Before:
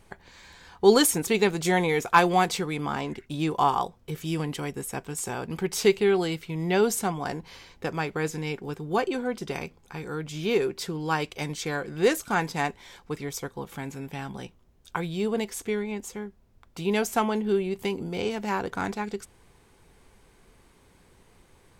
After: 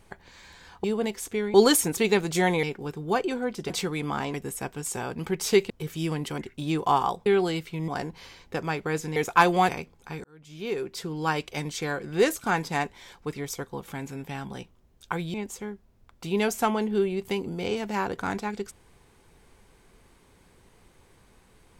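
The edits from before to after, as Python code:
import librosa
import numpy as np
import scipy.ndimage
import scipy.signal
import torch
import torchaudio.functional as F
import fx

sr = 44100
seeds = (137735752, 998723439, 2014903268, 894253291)

y = fx.edit(x, sr, fx.swap(start_s=1.93, length_s=0.53, other_s=8.46, other_length_s=1.07),
    fx.swap(start_s=3.1, length_s=0.88, other_s=4.66, other_length_s=1.36),
    fx.cut(start_s=6.64, length_s=0.54),
    fx.fade_in_span(start_s=10.08, length_s=0.98),
    fx.move(start_s=15.18, length_s=0.7, to_s=0.84), tone=tone)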